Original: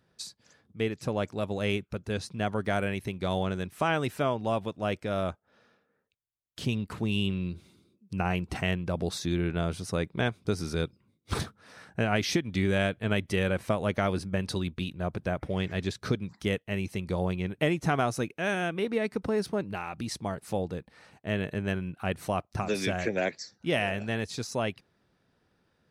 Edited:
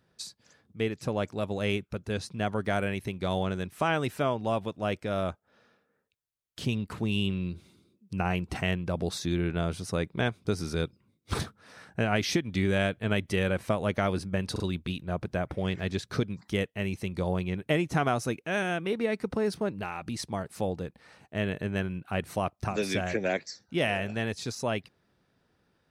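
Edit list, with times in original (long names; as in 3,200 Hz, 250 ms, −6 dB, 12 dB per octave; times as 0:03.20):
0:14.52: stutter 0.04 s, 3 plays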